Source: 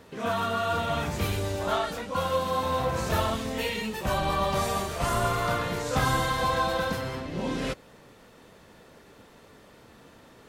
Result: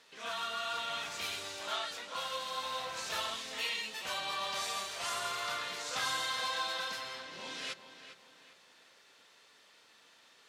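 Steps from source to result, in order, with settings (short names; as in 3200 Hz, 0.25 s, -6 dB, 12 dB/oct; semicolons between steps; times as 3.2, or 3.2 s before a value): band-pass 4300 Hz, Q 0.82; on a send: darkening echo 0.402 s, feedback 41%, low-pass 4500 Hz, level -11 dB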